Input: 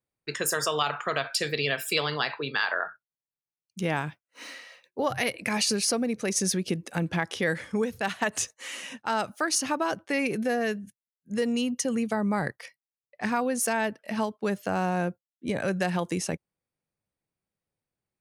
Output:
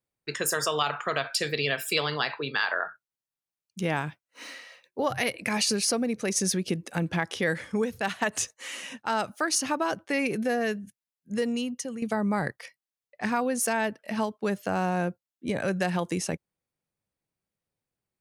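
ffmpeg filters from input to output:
-filter_complex "[0:a]asplit=2[s0][s1];[s0]atrim=end=12.02,asetpts=PTS-STARTPTS,afade=t=out:st=11.34:d=0.68:silence=0.298538[s2];[s1]atrim=start=12.02,asetpts=PTS-STARTPTS,afade=t=in:d=0.004:c=hsin:silence=0.298538[s3];[s2][s3]concat=n=2:v=0:a=1"

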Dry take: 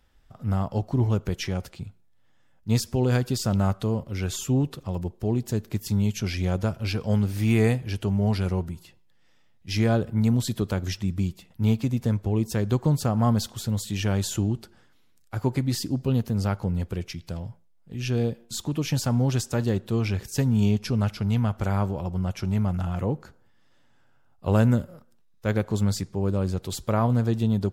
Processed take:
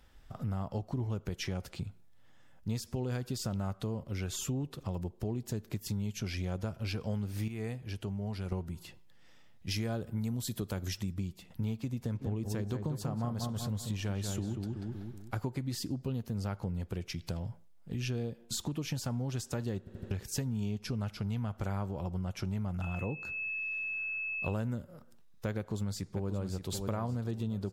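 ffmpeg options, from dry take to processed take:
-filter_complex "[0:a]asettb=1/sr,asplit=3[s0][s1][s2];[s0]atrim=end=9.714[s3];[s1]atrim=start=9.71:end=11.14,asetpts=PTS-STARTPTS,afade=t=in:d=0.004:c=qsin,afade=t=out:st=1.426:d=0.004:c=qsin,highshelf=f=8100:g=10.5[s4];[s2]atrim=start=11.136[s5];[s3][s4]acrossfade=d=0.004:c1=hsin:c2=qsin[s6];[s6][s5]acrossfade=d=0.004:c1=qsin:c2=hsin,asplit=3[s7][s8][s9];[s7]afade=t=out:st=12.14:d=0.02[s10];[s8]asplit=2[s11][s12];[s12]adelay=189,lowpass=f=2000:p=1,volume=0.562,asplit=2[s13][s14];[s14]adelay=189,lowpass=f=2000:p=1,volume=0.4,asplit=2[s15][s16];[s16]adelay=189,lowpass=f=2000:p=1,volume=0.4,asplit=2[s17][s18];[s18]adelay=189,lowpass=f=2000:p=1,volume=0.4,asplit=2[s19][s20];[s20]adelay=189,lowpass=f=2000:p=1,volume=0.4[s21];[s11][s13][s15][s17][s19][s21]amix=inputs=6:normalize=0,afade=t=in:st=12.14:d=0.02,afade=t=out:st=15.48:d=0.02[s22];[s9]afade=t=in:st=15.48:d=0.02[s23];[s10][s22][s23]amix=inputs=3:normalize=0,asettb=1/sr,asplit=3[s24][s25][s26];[s24]atrim=end=22.824[s27];[s25]atrim=start=22.82:end=24.54,asetpts=PTS-STARTPTS,afade=t=in:d=0.004:c=qsin,afade=t=out:st=1.716:d=0.004:c=qsin,aeval=exprs='val(0)+0.0178*sin(2*PI*2600*n/s)':c=same[s28];[s26]atrim=start=24.536[s29];[s27][s28]acrossfade=d=0.004:c1=hsin:c2=qsin[s30];[s30][s29]acrossfade=d=0.004:c1=qsin:c2=hsin,asplit=2[s31][s32];[s32]afade=t=in:st=25.58:d=0.01,afade=t=out:st=26.72:d=0.01,aecho=0:1:580|1160|1740|2320:0.354813|0.141925|0.0567701|0.0227081[s33];[s31][s33]amix=inputs=2:normalize=0,asplit=7[s34][s35][s36][s37][s38][s39][s40];[s34]atrim=end=7.482[s41];[s35]atrim=start=7.478:end=8.522,asetpts=PTS-STARTPTS,volume=0.282[s42];[s36]atrim=start=8.518:end=19.872[s43];[s37]atrim=start=19.788:end=19.872[s44];[s38]atrim=start=19.788:end=19.872[s45];[s39]atrim=start=19.788:end=19.872[s46];[s40]atrim=start=20.108[s47];[s41][s42]acrossfade=d=0.004:c1=hsin:c2=hsin[s48];[s48][s43]acrossfade=d=0.004:c1=hsin:c2=hsin[s49];[s49][s44]acrossfade=d=0.004:c1=hsin:c2=hsin[s50];[s50][s45]acrossfade=d=0.004:c1=hsin:c2=hsin[s51];[s51][s46]acrossfade=d=0.004:c1=hsin:c2=hsin[s52];[s52][s47]acrossfade=d=0.004:c1=hsin:c2=hsin,acompressor=threshold=0.0141:ratio=5,volume=1.41"

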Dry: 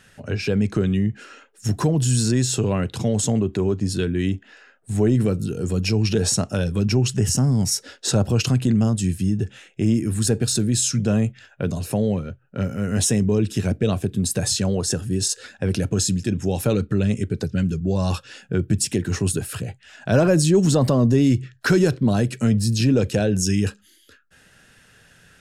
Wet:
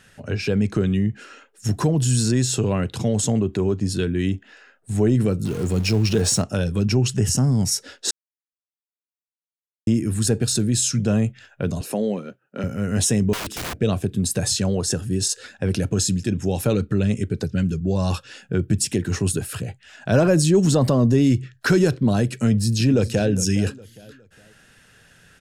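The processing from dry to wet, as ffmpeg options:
-filter_complex "[0:a]asettb=1/sr,asplit=3[s0][s1][s2];[s0]atrim=end=5.454[s3];[s1]atrim=start=5.45:end=6.42,asetpts=PTS-STARTPTS,afade=t=in:d=0.004:c=qsin,afade=t=out:st=0.966:d=0.004:c=qsin,aeval=exprs='val(0)+0.5*0.0266*sgn(val(0))':c=same[s4];[s2]atrim=start=6.416[s5];[s3][s4]acrossfade=d=0.004:c1=hsin:c2=qsin[s6];[s6][s5]acrossfade=d=0.004:c1=qsin:c2=hsin,asettb=1/sr,asplit=3[s7][s8][s9];[s7]atrim=end=11.814[s10];[s8]atrim=start=11.81:end=12.64,asetpts=PTS-STARTPTS,afade=t=in:d=0.004:c=qsin,afade=t=out:st=0.826:d=0.004:c=qsin,highpass=f=200:w=0.5412,highpass=f=200:w=1.3066[s11];[s9]atrim=start=12.636[s12];[s10][s11]acrossfade=d=0.004:c1=hsin:c2=qsin[s13];[s13][s12]acrossfade=d=0.004:c1=qsin:c2=hsin,asettb=1/sr,asplit=3[s14][s15][s16];[s14]atrim=end=13.334[s17];[s15]atrim=start=13.33:end=13.78,asetpts=PTS-STARTPTS,afade=t=in:d=0.004:c=qsin,afade=t=out:st=0.446:d=0.004:c=qsin,aeval=exprs='(mod(16.8*val(0)+1,2)-1)/16.8':c=same[s18];[s16]atrim=start=13.776[s19];[s17][s18]acrossfade=d=0.004:c1=hsin:c2=qsin[s20];[s20][s19]acrossfade=d=0.004:c1=qsin:c2=hsin,asplit=2[s21][s22];[s22]afade=t=in:st=22.48:d=0.01,afade=t=out:st=23.29:d=0.01,aecho=0:1:410|820|1230:0.16788|0.0587581|0.0205653[s23];[s21][s23]amix=inputs=2:normalize=0,asplit=3[s24][s25][s26];[s24]atrim=end=8.11,asetpts=PTS-STARTPTS,afade=t=out:st=8.106:d=0.004:c=hsin[s27];[s25]atrim=start=8.11:end=9.87,asetpts=PTS-STARTPTS,volume=0[s28];[s26]atrim=start=9.87,asetpts=PTS-STARTPTS,afade=t=in:d=0.004:c=hsin[s29];[s27][s28][s29]concat=n=3:v=0:a=1"

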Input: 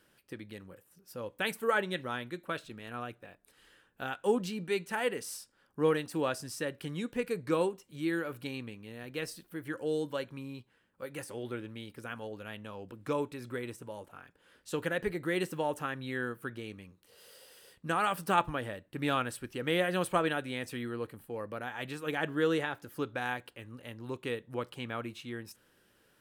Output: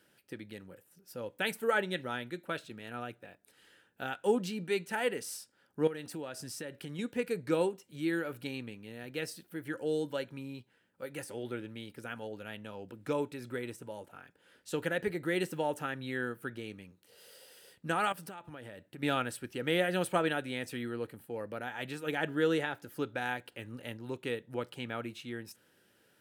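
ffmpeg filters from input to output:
-filter_complex "[0:a]asettb=1/sr,asplit=3[s0][s1][s2];[s0]atrim=end=5.874[s3];[s1]atrim=start=5.87:end=6.99,asetpts=PTS-STARTPTS,afade=t=in:d=0.004:c=qsin,afade=t=out:st=1.116:d=0.004:c=qsin,acompressor=threshold=0.0126:ratio=4:attack=3.2:release=140:knee=1:detection=peak[s4];[s2]atrim=start=6.986[s5];[s3][s4]acrossfade=d=0.004:c1=hsin:c2=qsin[s6];[s6][s5]acrossfade=d=0.004:c1=qsin:c2=hsin,asettb=1/sr,asplit=3[s7][s8][s9];[s7]atrim=end=18.124[s10];[s8]atrim=start=18.12:end=19.03,asetpts=PTS-STARTPTS,afade=t=in:d=0.004:c=qsin,afade=t=out:st=0.906:d=0.004:c=qsin,acompressor=threshold=0.00794:ratio=8:attack=3.2:release=140:knee=1:detection=peak[s11];[s9]atrim=start=19.026[s12];[s10][s11]acrossfade=d=0.004:c1=hsin:c2=qsin[s13];[s13][s12]acrossfade=d=0.004:c1=qsin:c2=hsin,asplit=3[s14][s15][s16];[s14]atrim=end=23.522[s17];[s15]atrim=start=23.518:end=23.972,asetpts=PTS-STARTPTS,volume=1.5[s18];[s16]atrim=start=23.968[s19];[s17][s18]acrossfade=d=0.004:c1=hsin:c2=hsin[s20];[s20][s19]acrossfade=d=0.004:c1=hsin:c2=hsin,highpass=96,bandreject=f=1100:w=5.7"

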